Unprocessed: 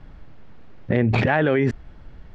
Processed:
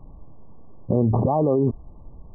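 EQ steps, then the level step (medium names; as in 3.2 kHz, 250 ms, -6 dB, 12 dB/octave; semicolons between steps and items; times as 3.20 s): brick-wall FIR low-pass 1.2 kHz; 0.0 dB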